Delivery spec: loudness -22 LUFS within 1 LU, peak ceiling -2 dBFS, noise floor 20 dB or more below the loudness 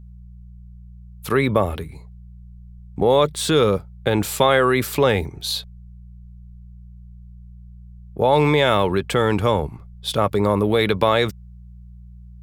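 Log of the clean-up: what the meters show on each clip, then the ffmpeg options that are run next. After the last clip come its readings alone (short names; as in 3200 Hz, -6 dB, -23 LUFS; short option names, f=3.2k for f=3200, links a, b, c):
hum 60 Hz; harmonics up to 180 Hz; hum level -38 dBFS; loudness -19.5 LUFS; peak -2.5 dBFS; loudness target -22.0 LUFS
-> -af "bandreject=f=60:t=h:w=4,bandreject=f=120:t=h:w=4,bandreject=f=180:t=h:w=4"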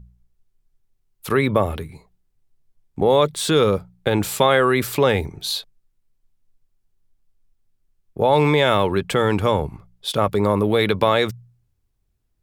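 hum none; loudness -19.5 LUFS; peak -3.0 dBFS; loudness target -22.0 LUFS
-> -af "volume=-2.5dB"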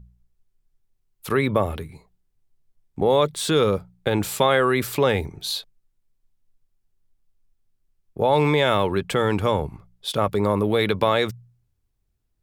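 loudness -22.0 LUFS; peak -5.5 dBFS; noise floor -72 dBFS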